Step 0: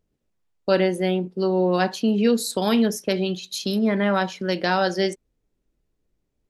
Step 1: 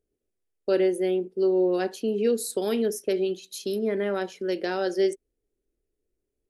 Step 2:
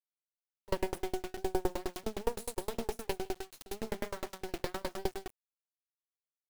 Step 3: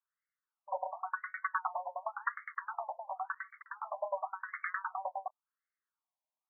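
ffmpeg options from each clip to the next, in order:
-af "equalizer=f=160:t=o:w=0.67:g=-9,equalizer=f=400:t=o:w=0.67:g=11,equalizer=f=1k:t=o:w=0.67:g=-7,equalizer=f=4k:t=o:w=0.67:g=-3,equalizer=f=10k:t=o:w=0.67:g=8,volume=-8dB"
-filter_complex "[0:a]asplit=2[a][b];[b]aecho=0:1:40|41|59|173:0.112|0.119|0.133|0.398[c];[a][c]amix=inputs=2:normalize=0,acrusher=bits=3:dc=4:mix=0:aa=0.000001,aeval=exprs='val(0)*pow(10,-35*if(lt(mod(9.7*n/s,1),2*abs(9.7)/1000),1-mod(9.7*n/s,1)/(2*abs(9.7)/1000),(mod(9.7*n/s,1)-2*abs(9.7)/1000)/(1-2*abs(9.7)/1000))/20)':c=same"
-af "aeval=exprs='0.0447*(abs(mod(val(0)/0.0447+3,4)-2)-1)':c=same,lowpass=f=3.3k:t=q:w=4.9,afftfilt=real='re*between(b*sr/1024,740*pow(1600/740,0.5+0.5*sin(2*PI*0.92*pts/sr))/1.41,740*pow(1600/740,0.5+0.5*sin(2*PI*0.92*pts/sr))*1.41)':imag='im*between(b*sr/1024,740*pow(1600/740,0.5+0.5*sin(2*PI*0.92*pts/sr))/1.41,740*pow(1600/740,0.5+0.5*sin(2*PI*0.92*pts/sr))*1.41)':win_size=1024:overlap=0.75,volume=10dB"

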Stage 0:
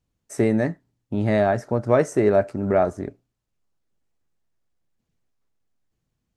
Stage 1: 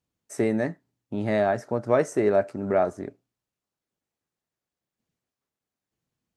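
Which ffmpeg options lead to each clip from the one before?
-af "highpass=f=190:p=1,volume=-2.5dB"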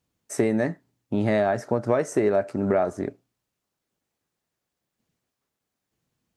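-af "acompressor=threshold=-24dB:ratio=6,volume=6dB"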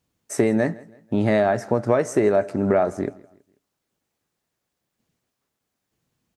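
-af "aecho=1:1:163|326|489:0.075|0.0292|0.0114,volume=3dB"

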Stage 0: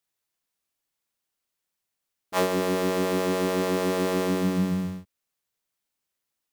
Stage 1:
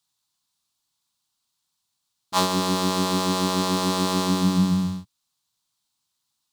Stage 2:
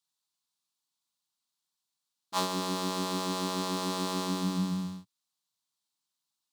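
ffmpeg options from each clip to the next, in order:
-af "equalizer=f=125:t=o:w=1:g=9,equalizer=f=250:t=o:w=1:g=3,equalizer=f=500:t=o:w=1:g=-9,equalizer=f=1k:t=o:w=1:g=10,equalizer=f=2k:t=o:w=1:g=-7,equalizer=f=4k:t=o:w=1:g=12,equalizer=f=8k:t=o:w=1:g=6"
-af "highpass=160,volume=-8.5dB"

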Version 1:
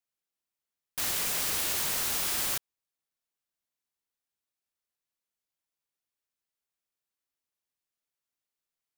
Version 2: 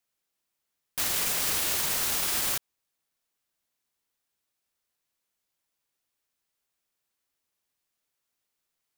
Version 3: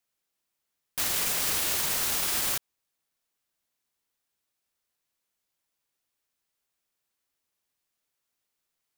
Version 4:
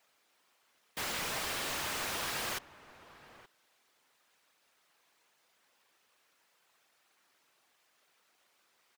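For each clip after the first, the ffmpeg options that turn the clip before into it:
-af "alimiter=level_in=1.5dB:limit=-24dB:level=0:latency=1,volume=-1.5dB,volume=7.5dB"
-af anull
-filter_complex "[0:a]afftfilt=real='hypot(re,im)*cos(2*PI*random(0))':imag='hypot(re,im)*sin(2*PI*random(1))':win_size=512:overlap=0.75,asplit=2[a][b];[b]highpass=f=720:p=1,volume=34dB,asoftclip=type=tanh:threshold=-20dB[c];[a][c]amix=inputs=2:normalize=0,lowpass=f=1.8k:p=1,volume=-6dB,asplit=2[d][e];[e]adelay=874.6,volume=-16dB,highshelf=f=4k:g=-19.7[f];[d][f]amix=inputs=2:normalize=0,volume=-2dB"

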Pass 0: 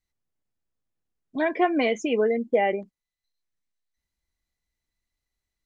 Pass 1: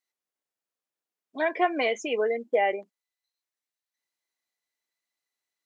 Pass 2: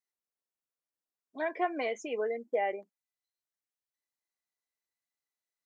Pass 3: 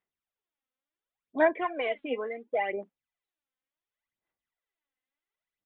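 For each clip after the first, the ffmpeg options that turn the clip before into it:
-af "highpass=460"
-af "equalizer=f=3.1k:t=o:w=0.92:g=-5.5,volume=-6.5dB"
-af "aphaser=in_gain=1:out_gain=1:delay=3.9:decay=0.71:speed=0.7:type=sinusoidal,aresample=8000,aresample=44100,volume=1dB"

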